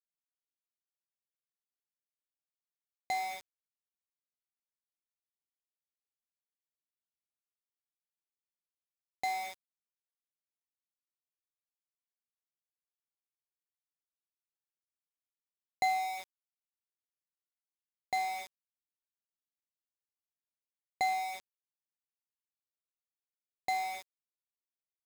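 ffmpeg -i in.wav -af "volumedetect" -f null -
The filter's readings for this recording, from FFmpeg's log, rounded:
mean_volume: -44.3 dB
max_volume: -18.9 dB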